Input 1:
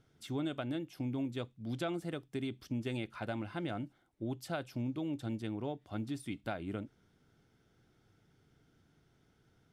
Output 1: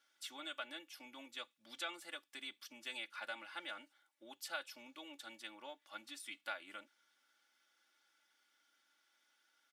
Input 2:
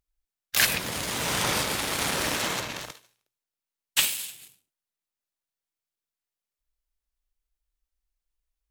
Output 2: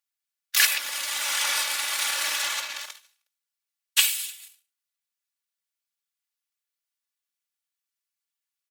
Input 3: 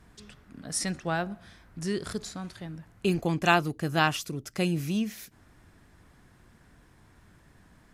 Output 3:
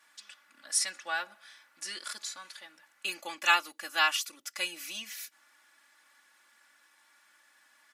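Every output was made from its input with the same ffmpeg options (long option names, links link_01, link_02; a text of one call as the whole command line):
ffmpeg -i in.wav -af "highpass=1300,aecho=1:1:3.5:0.95" out.wav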